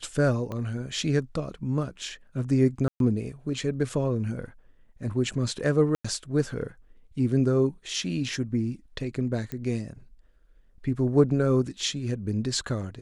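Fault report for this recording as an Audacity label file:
0.520000	0.520000	pop -22 dBFS
2.880000	3.000000	gap 0.122 s
5.950000	6.040000	gap 95 ms
9.520000	9.520000	pop -20 dBFS

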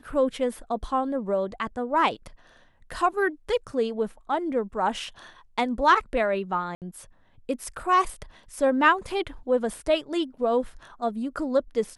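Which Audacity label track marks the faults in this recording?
6.750000	6.820000	gap 68 ms

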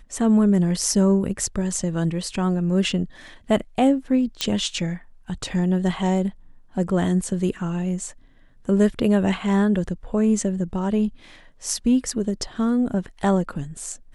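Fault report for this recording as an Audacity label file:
4.410000	4.410000	pop -8 dBFS

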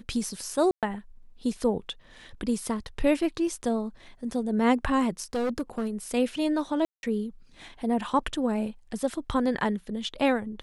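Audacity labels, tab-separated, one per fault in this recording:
0.710000	0.830000	gap 0.117 s
5.240000	5.880000	clipped -24 dBFS
6.850000	7.030000	gap 0.181 s

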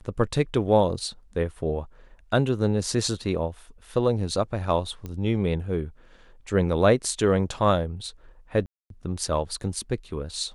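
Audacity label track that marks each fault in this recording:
5.060000	5.060000	pop -22 dBFS
8.660000	8.900000	gap 0.242 s

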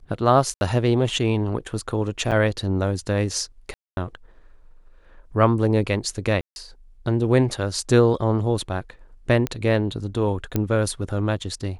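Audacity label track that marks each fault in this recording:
0.540000	0.610000	gap 71 ms
2.310000	2.320000	gap 7.9 ms
3.740000	3.970000	gap 0.23 s
6.410000	6.560000	gap 0.151 s
9.470000	9.470000	pop -11 dBFS
10.560000	10.560000	pop -9 dBFS

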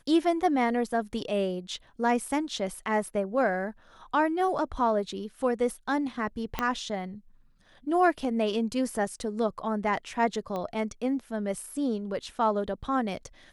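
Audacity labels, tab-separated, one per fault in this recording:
6.590000	6.590000	pop -13 dBFS
10.560000	10.560000	pop -22 dBFS

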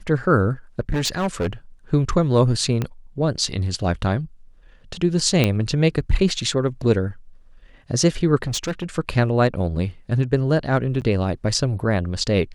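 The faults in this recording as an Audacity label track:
0.800000	1.530000	clipped -18.5 dBFS
2.820000	2.820000	pop -11 dBFS
5.440000	5.440000	pop -5 dBFS
8.440000	8.840000	clipped -20.5 dBFS
11.010000	11.020000	gap 8.4 ms

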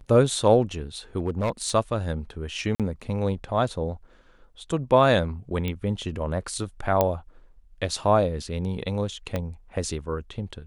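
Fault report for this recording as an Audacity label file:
1.180000	1.700000	clipped -20 dBFS
2.750000	2.800000	gap 47 ms
5.680000	5.680000	pop -16 dBFS
7.010000	7.010000	pop -7 dBFS
9.360000	9.360000	pop -14 dBFS

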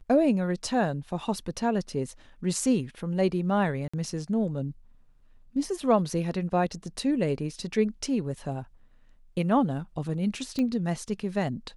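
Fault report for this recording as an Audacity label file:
3.880000	3.940000	gap 55 ms
10.590000	10.590000	pop -18 dBFS

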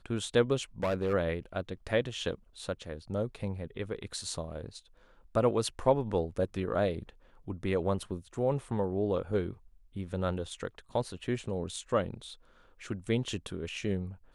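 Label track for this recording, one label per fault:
0.830000	1.140000	clipped -25.5 dBFS

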